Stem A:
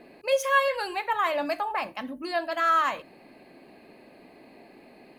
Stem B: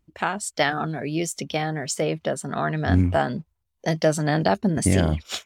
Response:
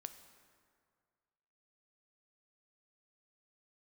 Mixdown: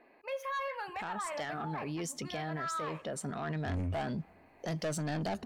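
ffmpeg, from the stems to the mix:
-filter_complex "[0:a]equalizer=f=125:t=o:w=1:g=-11,equalizer=f=1000:t=o:w=1:g=8,equalizer=f=2000:t=o:w=1:g=6,equalizer=f=4000:t=o:w=1:g=-3,equalizer=f=8000:t=o:w=1:g=-11,asoftclip=type=tanh:threshold=0.282,volume=0.188,asplit=3[s0][s1][s2];[s1]volume=0.251[s3];[1:a]adelay=800,volume=1.06,asplit=2[s4][s5];[s5]volume=0.075[s6];[s2]apad=whole_len=275969[s7];[s4][s7]sidechaincompress=threshold=0.01:ratio=8:attack=16:release=1130[s8];[2:a]atrim=start_sample=2205[s9];[s3][s6]amix=inputs=2:normalize=0[s10];[s10][s9]afir=irnorm=-1:irlink=0[s11];[s0][s8][s11]amix=inputs=3:normalize=0,asoftclip=type=tanh:threshold=0.0944,alimiter=level_in=2.11:limit=0.0631:level=0:latency=1:release=38,volume=0.473"

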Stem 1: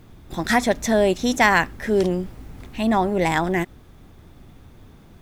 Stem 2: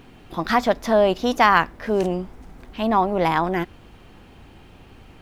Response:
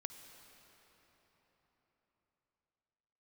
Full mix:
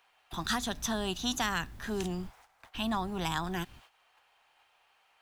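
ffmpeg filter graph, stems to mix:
-filter_complex "[0:a]volume=0.422[s0];[1:a]highpass=f=720:w=0.5412,highpass=f=720:w=1.3066,acompressor=threshold=0.1:ratio=6,volume=-1,volume=0.891,asplit=2[s1][s2];[s2]apad=whole_len=229945[s3];[s0][s3]sidechaingate=range=0.0398:threshold=0.00355:ratio=16:detection=peak[s4];[s4][s1]amix=inputs=2:normalize=0,agate=range=0.251:threshold=0.00224:ratio=16:detection=peak,acrossover=split=180|3000[s5][s6][s7];[s6]acompressor=threshold=0.00316:ratio=1.5[s8];[s5][s8][s7]amix=inputs=3:normalize=0"

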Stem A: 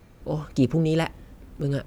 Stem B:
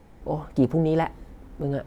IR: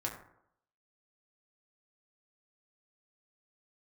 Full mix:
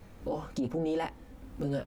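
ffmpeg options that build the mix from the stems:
-filter_complex "[0:a]flanger=delay=20:depth=2.4:speed=1.1,volume=1.33[s0];[1:a]adelay=4,volume=0.473,asplit=2[s1][s2];[s2]apad=whole_len=86589[s3];[s0][s3]sidechaincompress=threshold=0.0178:ratio=8:attack=41:release=832[s4];[s4][s1]amix=inputs=2:normalize=0,alimiter=level_in=1.06:limit=0.0631:level=0:latency=1:release=14,volume=0.944"

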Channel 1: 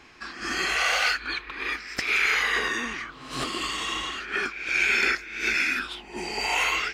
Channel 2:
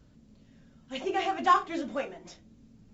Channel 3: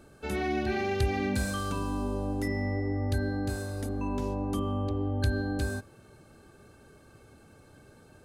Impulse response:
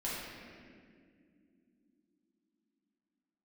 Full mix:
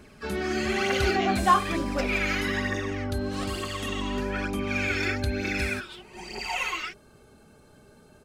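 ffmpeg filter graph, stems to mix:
-filter_complex "[0:a]aecho=1:1:5.4:0.65,aphaser=in_gain=1:out_gain=1:delay=3.4:decay=0.63:speed=1.1:type=triangular,volume=0.316[s0];[1:a]volume=1.26[s1];[2:a]aecho=1:1:4.8:0.41,volume=1.06[s2];[s0][s1][s2]amix=inputs=3:normalize=0"

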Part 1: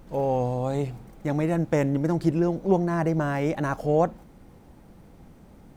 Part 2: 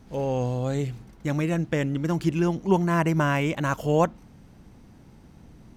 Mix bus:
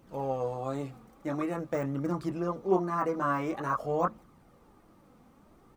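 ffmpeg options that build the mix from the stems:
-filter_complex "[0:a]highpass=200,deesser=0.95,volume=0.75[s0];[1:a]lowpass=f=1200:t=q:w=13,volume=-1,adelay=23,volume=0.299[s1];[s0][s1]amix=inputs=2:normalize=0,flanger=delay=0.3:depth=3.9:regen=53:speed=0.48:shape=triangular"

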